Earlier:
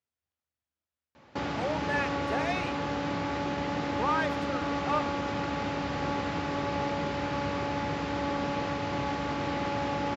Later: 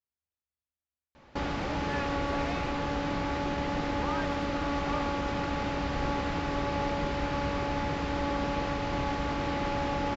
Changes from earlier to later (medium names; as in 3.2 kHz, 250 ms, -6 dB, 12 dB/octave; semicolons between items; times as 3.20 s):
speech -8.0 dB; master: remove high-pass 80 Hz 24 dB/octave